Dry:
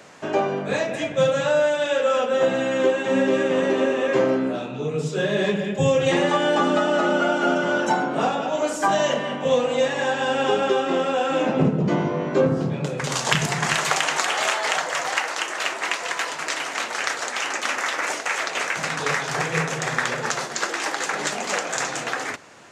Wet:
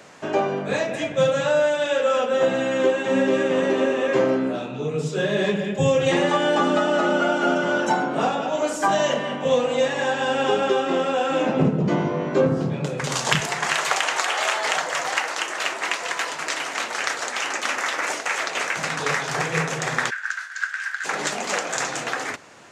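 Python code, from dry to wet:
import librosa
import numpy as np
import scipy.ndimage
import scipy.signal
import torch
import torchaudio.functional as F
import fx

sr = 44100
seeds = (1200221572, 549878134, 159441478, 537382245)

y = fx.bass_treble(x, sr, bass_db=-14, treble_db=-2, at=(13.4, 14.55))
y = fx.ladder_highpass(y, sr, hz=1500.0, resonance_pct=85, at=(20.09, 21.04), fade=0.02)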